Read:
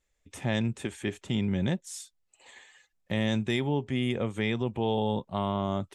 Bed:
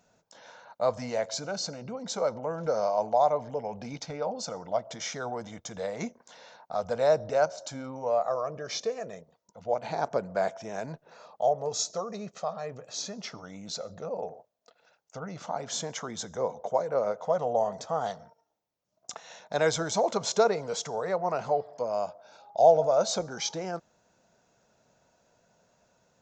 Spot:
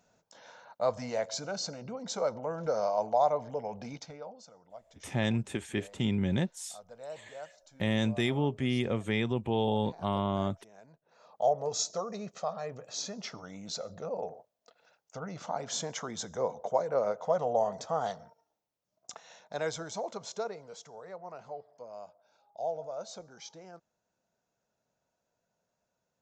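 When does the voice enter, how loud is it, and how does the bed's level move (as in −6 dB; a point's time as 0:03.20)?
4.70 s, −1.0 dB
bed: 0:03.88 −2.5 dB
0:04.52 −20 dB
0:10.95 −20 dB
0:11.41 −1.5 dB
0:18.52 −1.5 dB
0:20.84 −15.5 dB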